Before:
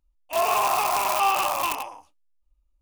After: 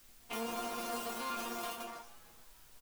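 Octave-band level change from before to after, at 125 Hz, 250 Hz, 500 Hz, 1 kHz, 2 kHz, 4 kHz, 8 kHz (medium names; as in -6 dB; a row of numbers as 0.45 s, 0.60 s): no reading, +0.5 dB, -14.0 dB, -19.0 dB, -15.0 dB, -13.0 dB, -14.0 dB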